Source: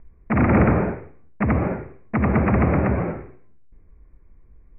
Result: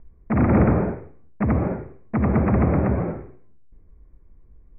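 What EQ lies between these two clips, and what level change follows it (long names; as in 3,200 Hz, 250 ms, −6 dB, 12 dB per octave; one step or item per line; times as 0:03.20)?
low-pass filter 1,000 Hz 6 dB per octave
0.0 dB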